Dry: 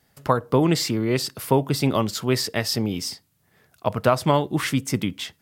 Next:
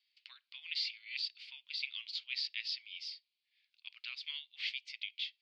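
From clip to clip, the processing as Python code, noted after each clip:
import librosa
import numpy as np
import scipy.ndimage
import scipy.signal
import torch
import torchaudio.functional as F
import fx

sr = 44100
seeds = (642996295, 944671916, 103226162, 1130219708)

y = scipy.signal.sosfilt(scipy.signal.ellip(3, 1.0, 80, [2300.0, 4600.0], 'bandpass', fs=sr, output='sos'), x)
y = y * librosa.db_to_amplitude(-5.5)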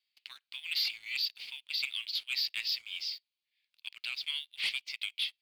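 y = fx.leveller(x, sr, passes=2)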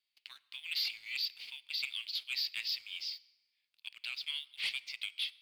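y = fx.rev_plate(x, sr, seeds[0], rt60_s=1.5, hf_ratio=0.6, predelay_ms=0, drr_db=18.0)
y = y * librosa.db_to_amplitude(-3.0)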